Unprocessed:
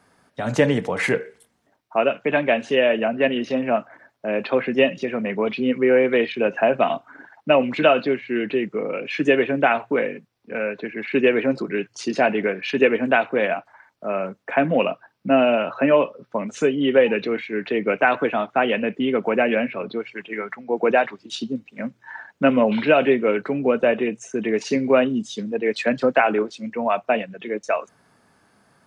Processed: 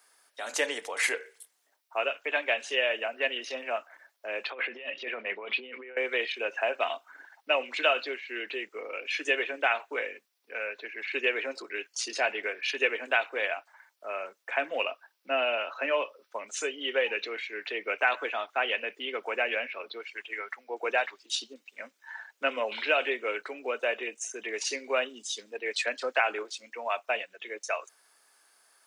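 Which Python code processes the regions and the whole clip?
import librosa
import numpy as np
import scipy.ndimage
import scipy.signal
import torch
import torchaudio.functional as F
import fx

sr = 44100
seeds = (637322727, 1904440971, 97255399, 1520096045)

y = fx.chain(x, sr, fx.lowpass(hz=3500.0, slope=24),
    fx.over_compress(threshold_db=-26.0, ratio=-1.0), at=(4.5, 5.97))
y = scipy.signal.sosfilt(scipy.signal.butter(4, 330.0, 'highpass', fs=sr, output='sos'), y)
y = fx.tilt_eq(y, sr, slope=4.5)
y = y * librosa.db_to_amplitude(-8.5)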